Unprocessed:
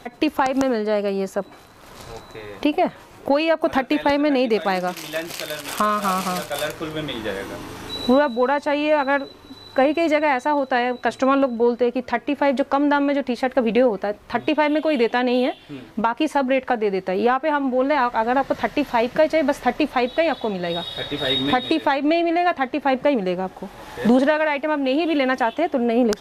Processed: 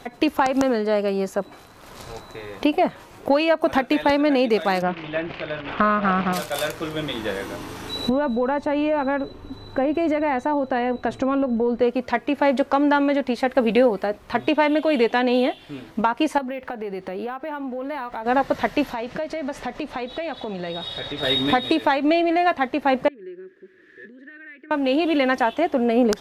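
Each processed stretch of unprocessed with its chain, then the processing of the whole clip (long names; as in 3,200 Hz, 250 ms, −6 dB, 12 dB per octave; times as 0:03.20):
0:04.82–0:06.33: low-pass filter 2,900 Hz 24 dB per octave + low-shelf EQ 280 Hz +7 dB + highs frequency-modulated by the lows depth 0.25 ms
0:08.09–0:11.81: spectral tilt −2.5 dB per octave + notch filter 5,100 Hz + downward compressor 4 to 1, threshold −18 dBFS
0:13.56–0:14.06: high-shelf EQ 4,500 Hz +6 dB + notch filter 6,200 Hz, Q 6.7
0:16.38–0:18.26: downward compressor 5 to 1, threshold −27 dBFS + linearly interpolated sample-rate reduction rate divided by 3×
0:18.93–0:21.23: downward compressor 4 to 1, threshold −26 dBFS + low-pass filter 8,400 Hz
0:23.08–0:24.71: parametric band 850 Hz −12.5 dB 1.5 octaves + downward compressor, threshold −29 dBFS + pair of resonant band-passes 800 Hz, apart 2.2 octaves
whole clip: no processing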